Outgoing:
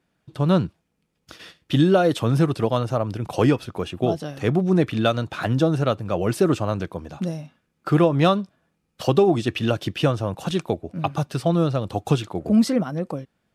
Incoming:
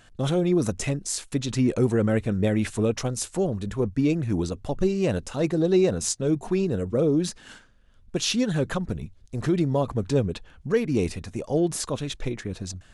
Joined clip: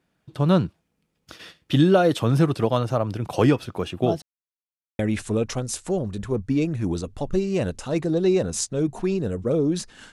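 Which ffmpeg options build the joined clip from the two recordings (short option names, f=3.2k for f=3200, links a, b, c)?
-filter_complex "[0:a]apad=whole_dur=10.12,atrim=end=10.12,asplit=2[a][b];[a]atrim=end=4.22,asetpts=PTS-STARTPTS,afade=t=out:st=4.216:d=0.004:c=hsin[c];[b]atrim=start=4.22:end=4.99,asetpts=PTS-STARTPTS,volume=0[d];[1:a]atrim=start=2.47:end=7.6,asetpts=PTS-STARTPTS,afade=t=in:d=0.004:c=hsin[e];[c][d][e]concat=n=3:v=0:a=1"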